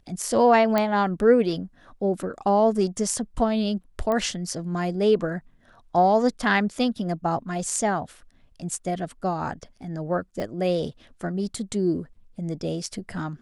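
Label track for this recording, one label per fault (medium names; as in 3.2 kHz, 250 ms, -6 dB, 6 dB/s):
0.780000	0.780000	pop -9 dBFS
4.120000	4.120000	pop -15 dBFS
10.400000	10.400000	dropout 2.1 ms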